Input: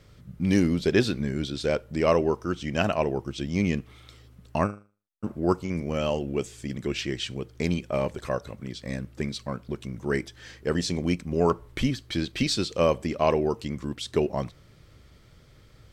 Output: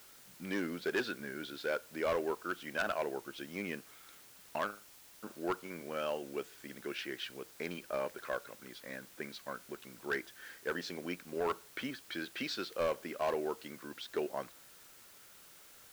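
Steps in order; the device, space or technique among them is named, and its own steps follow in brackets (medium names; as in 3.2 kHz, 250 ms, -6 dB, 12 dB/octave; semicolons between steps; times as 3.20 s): drive-through speaker (band-pass 360–4000 Hz; peaking EQ 1.5 kHz +11 dB 0.41 oct; hard clipper -18.5 dBFS, distortion -12 dB; white noise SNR 18 dB); trim -8.5 dB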